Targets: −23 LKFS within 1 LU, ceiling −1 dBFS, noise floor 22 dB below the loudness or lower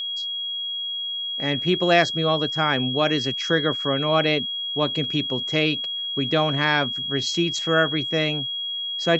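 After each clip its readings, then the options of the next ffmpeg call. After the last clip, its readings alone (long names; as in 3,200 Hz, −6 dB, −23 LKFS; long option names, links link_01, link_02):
interfering tone 3,300 Hz; level of the tone −26 dBFS; integrated loudness −22.0 LKFS; sample peak −4.0 dBFS; target loudness −23.0 LKFS
→ -af "bandreject=frequency=3300:width=30"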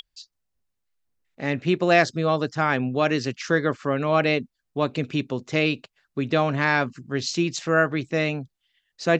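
interfering tone none found; integrated loudness −24.0 LKFS; sample peak −4.5 dBFS; target loudness −23.0 LKFS
→ -af "volume=1dB"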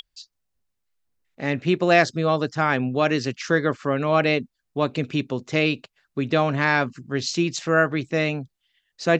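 integrated loudness −23.0 LKFS; sample peak −3.5 dBFS; background noise floor −78 dBFS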